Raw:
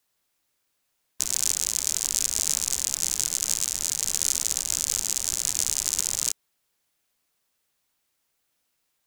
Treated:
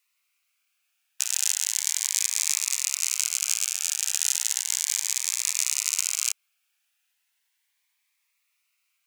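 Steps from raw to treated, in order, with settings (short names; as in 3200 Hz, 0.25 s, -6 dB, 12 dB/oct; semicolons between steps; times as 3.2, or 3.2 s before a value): ladder high-pass 780 Hz, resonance 20%; bell 2400 Hz +10 dB 0.66 oct; cascading phaser rising 0.35 Hz; gain +4.5 dB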